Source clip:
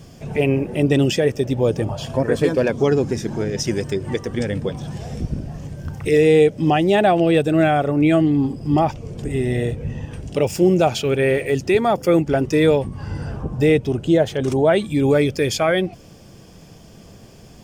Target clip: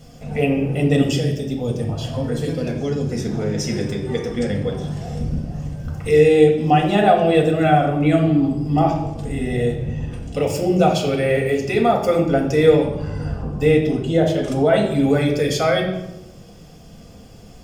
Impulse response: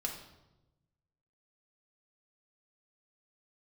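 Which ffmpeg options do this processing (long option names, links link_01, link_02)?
-filter_complex "[0:a]asettb=1/sr,asplit=3[link_01][link_02][link_03];[link_01]atrim=end=1.024[link_04];[link_02]atrim=start=1.02:end=3.12,asetpts=PTS-STARTPTS,afade=type=in:duration=0.004:curve=qsin,afade=type=out:start_time=2.096:duration=0.004:curve=qsin,acrossover=split=290|3000[link_05][link_06][link_07];[link_06]acompressor=threshold=-29dB:ratio=4[link_08];[link_05][link_08][link_07]amix=inputs=3:normalize=0[link_09];[link_03]atrim=start=3.116[link_10];[link_04][link_09]acrossfade=duration=0.004:curve1=hsin:curve2=qsin[link_11];[link_11][link_10]acrossfade=duration=0.004:curve1=qsin:curve2=hsin[link_12];[1:a]atrim=start_sample=2205[link_13];[link_12][link_13]afir=irnorm=-1:irlink=0,volume=-1.5dB"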